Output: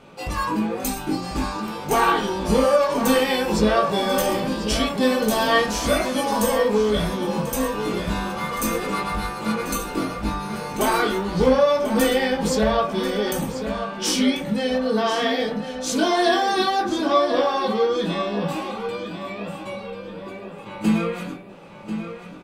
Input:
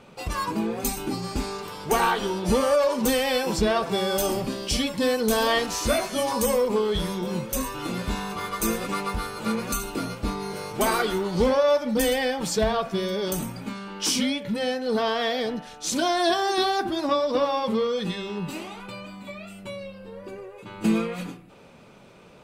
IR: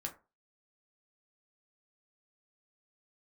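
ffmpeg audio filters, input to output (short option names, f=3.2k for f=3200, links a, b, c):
-filter_complex "[0:a]bandreject=f=50:t=h:w=6,bandreject=f=100:t=h:w=6,asplit=2[a][b];[b]adelay=1040,lowpass=f=4.8k:p=1,volume=-9dB,asplit=2[c][d];[d]adelay=1040,lowpass=f=4.8k:p=1,volume=0.43,asplit=2[e][f];[f]adelay=1040,lowpass=f=4.8k:p=1,volume=0.43,asplit=2[g][h];[h]adelay=1040,lowpass=f=4.8k:p=1,volume=0.43,asplit=2[i][j];[j]adelay=1040,lowpass=f=4.8k:p=1,volume=0.43[k];[a][c][e][g][i][k]amix=inputs=6:normalize=0,asplit=2[l][m];[1:a]atrim=start_sample=2205,lowpass=4k,adelay=19[n];[m][n]afir=irnorm=-1:irlink=0,volume=1.5dB[o];[l][o]amix=inputs=2:normalize=0"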